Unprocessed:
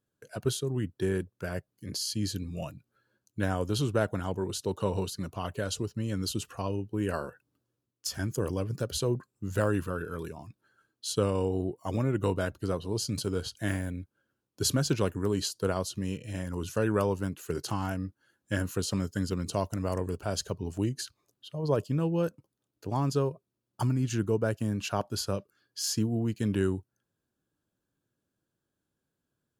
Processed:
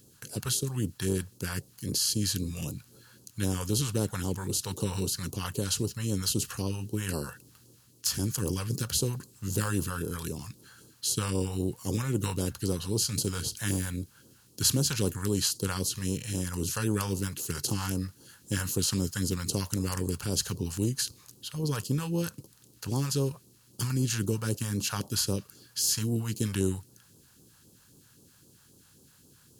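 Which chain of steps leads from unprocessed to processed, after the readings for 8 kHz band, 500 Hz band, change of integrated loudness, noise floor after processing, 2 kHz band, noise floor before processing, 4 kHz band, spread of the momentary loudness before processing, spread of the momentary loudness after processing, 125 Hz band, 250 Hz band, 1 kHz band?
+8.0 dB, −4.5 dB, +1.0 dB, −60 dBFS, −0.5 dB, −85 dBFS, +4.5 dB, 9 LU, 9 LU, +1.0 dB, −0.5 dB, −4.0 dB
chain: compressor on every frequency bin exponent 0.6
parametric band 640 Hz −14 dB 0.26 octaves
all-pass phaser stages 2, 3.8 Hz, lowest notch 300–1,800 Hz
high-shelf EQ 10,000 Hz +12 dB
level −1.5 dB

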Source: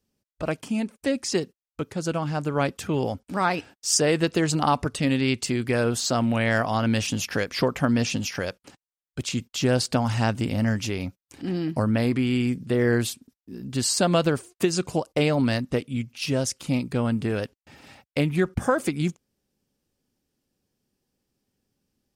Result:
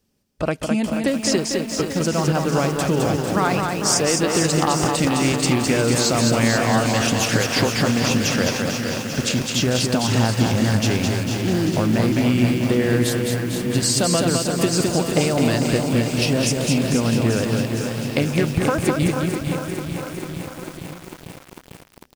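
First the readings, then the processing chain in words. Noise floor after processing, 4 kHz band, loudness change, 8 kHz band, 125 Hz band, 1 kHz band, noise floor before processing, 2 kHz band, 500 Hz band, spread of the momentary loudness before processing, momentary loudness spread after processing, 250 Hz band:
−44 dBFS, +7.5 dB, +5.5 dB, +7.5 dB, +6.0 dB, +4.5 dB, below −85 dBFS, +5.5 dB, +5.0 dB, 9 LU, 7 LU, +5.5 dB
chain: downward compressor 8 to 1, threshold −24 dBFS, peak gain reduction 9 dB
on a send: reverse bouncing-ball delay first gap 210 ms, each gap 1.3×, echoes 5
on the sum: feedback echo at a low word length 448 ms, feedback 80%, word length 7 bits, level −8.5 dB
level +7.5 dB

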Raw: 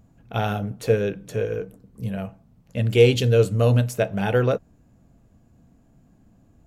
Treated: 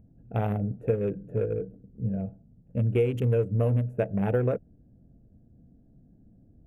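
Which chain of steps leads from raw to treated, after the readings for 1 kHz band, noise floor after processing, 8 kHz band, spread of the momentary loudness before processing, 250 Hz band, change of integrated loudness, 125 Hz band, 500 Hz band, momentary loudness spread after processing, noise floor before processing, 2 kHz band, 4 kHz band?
−8.0 dB, −59 dBFS, below −20 dB, 16 LU, −3.5 dB, −6.0 dB, −4.5 dB, −7.0 dB, 9 LU, −58 dBFS, −13.0 dB, below −20 dB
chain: adaptive Wiener filter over 41 samples
drawn EQ curve 500 Hz 0 dB, 1,200 Hz −5 dB, 2,400 Hz −5 dB, 4,400 Hz −27 dB, 10,000 Hz −5 dB
downward compressor 6 to 1, threshold −21 dBFS, peak gain reduction 11 dB

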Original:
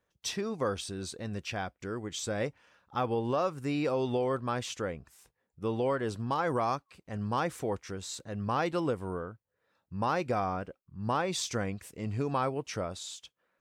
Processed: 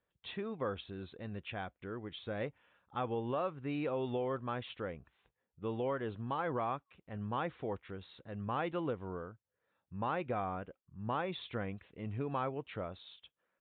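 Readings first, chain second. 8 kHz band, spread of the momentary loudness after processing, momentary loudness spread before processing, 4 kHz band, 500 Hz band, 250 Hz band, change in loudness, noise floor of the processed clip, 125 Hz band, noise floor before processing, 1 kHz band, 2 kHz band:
below −40 dB, 10 LU, 9 LU, −9.0 dB, −6.0 dB, −6.0 dB, −6.0 dB, below −85 dBFS, −6.0 dB, −81 dBFS, −6.0 dB, −6.0 dB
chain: downsampling to 8,000 Hz
level −6 dB

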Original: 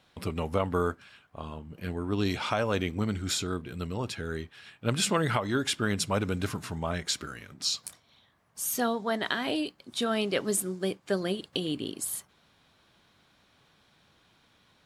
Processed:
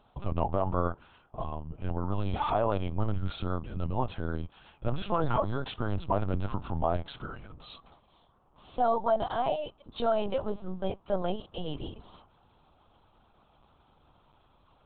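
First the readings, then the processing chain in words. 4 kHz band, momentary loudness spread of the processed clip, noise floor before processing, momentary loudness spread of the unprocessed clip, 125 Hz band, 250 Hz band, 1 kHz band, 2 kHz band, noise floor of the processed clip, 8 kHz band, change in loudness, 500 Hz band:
−11.5 dB, 14 LU, −66 dBFS, 10 LU, +0.5 dB, −4.5 dB, +3.5 dB, −10.5 dB, −65 dBFS, below −40 dB, −1.5 dB, +0.5 dB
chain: dynamic equaliser 770 Hz, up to +5 dB, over −44 dBFS, Q 2.2
brickwall limiter −20 dBFS, peak gain reduction 9 dB
high-frequency loss of the air 410 metres
phaser with its sweep stopped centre 790 Hz, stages 4
linear-prediction vocoder at 8 kHz pitch kept
level +7.5 dB

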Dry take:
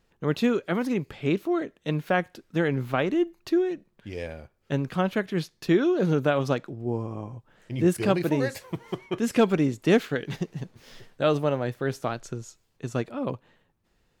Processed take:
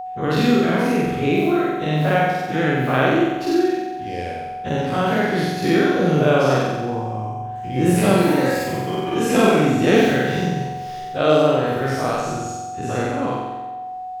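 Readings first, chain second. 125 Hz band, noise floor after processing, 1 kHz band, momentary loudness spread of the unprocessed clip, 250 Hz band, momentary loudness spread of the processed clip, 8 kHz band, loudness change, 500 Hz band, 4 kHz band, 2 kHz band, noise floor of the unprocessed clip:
+7.0 dB, −31 dBFS, +12.5 dB, 15 LU, +7.0 dB, 12 LU, +10.5 dB, +7.0 dB, +7.5 dB, +9.5 dB, +9.5 dB, −70 dBFS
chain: every bin's largest magnitude spread in time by 120 ms
flutter between parallel walls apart 7.8 metres, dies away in 1.2 s
steady tone 740 Hz −27 dBFS
level −1 dB

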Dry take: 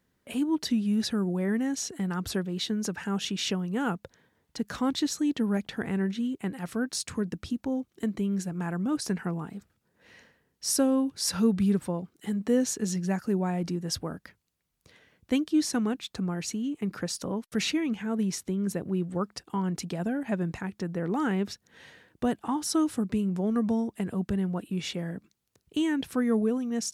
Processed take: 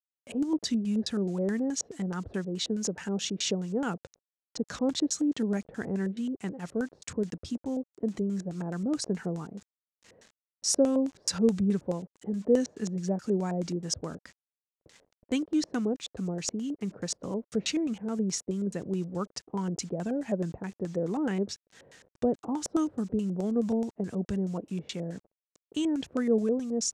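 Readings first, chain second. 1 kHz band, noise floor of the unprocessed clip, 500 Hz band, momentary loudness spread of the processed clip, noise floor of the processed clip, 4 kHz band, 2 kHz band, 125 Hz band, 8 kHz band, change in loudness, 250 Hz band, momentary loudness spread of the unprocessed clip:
−4.5 dB, −75 dBFS, +1.5 dB, 9 LU, below −85 dBFS, −2.0 dB, −5.0 dB, −2.5 dB, 0.0 dB, −1.5 dB, −2.0 dB, 8 LU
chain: bit reduction 9 bits
auto-filter low-pass square 4.7 Hz 540–7,100 Hz
level −3 dB

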